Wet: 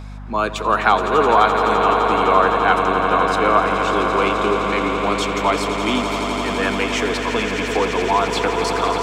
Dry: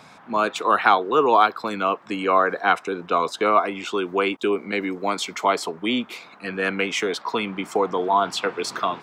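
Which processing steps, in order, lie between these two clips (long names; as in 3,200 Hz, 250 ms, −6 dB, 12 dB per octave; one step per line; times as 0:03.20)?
echo that builds up and dies away 85 ms, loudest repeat 8, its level −10.5 dB
mains hum 50 Hz, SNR 15 dB
level +1 dB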